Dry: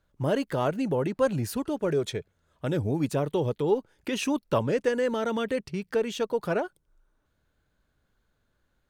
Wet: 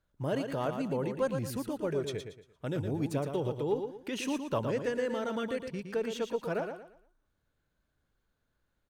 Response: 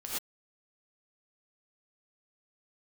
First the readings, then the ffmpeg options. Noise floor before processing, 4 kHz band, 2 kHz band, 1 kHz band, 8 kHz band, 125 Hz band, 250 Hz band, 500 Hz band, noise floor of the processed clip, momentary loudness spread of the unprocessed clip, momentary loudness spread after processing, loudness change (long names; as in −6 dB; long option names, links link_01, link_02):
−74 dBFS, −5.5 dB, −5.5 dB, −5.5 dB, −5.5 dB, −5.5 dB, −5.5 dB, −5.5 dB, −80 dBFS, 5 LU, 5 LU, −5.5 dB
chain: -af "aecho=1:1:115|230|345|460:0.447|0.138|0.0429|0.0133,volume=-6.5dB"